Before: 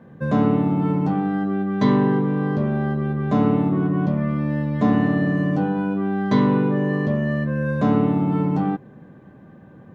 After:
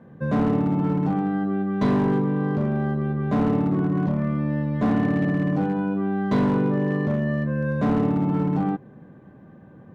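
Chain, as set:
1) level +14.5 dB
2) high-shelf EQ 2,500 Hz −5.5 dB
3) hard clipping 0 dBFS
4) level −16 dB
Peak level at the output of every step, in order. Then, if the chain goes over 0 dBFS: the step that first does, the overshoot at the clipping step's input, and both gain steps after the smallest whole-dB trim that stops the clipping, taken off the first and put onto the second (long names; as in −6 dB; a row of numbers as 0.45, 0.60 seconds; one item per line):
+8.0, +8.0, 0.0, −16.0 dBFS
step 1, 8.0 dB
step 1 +6.5 dB, step 4 −8 dB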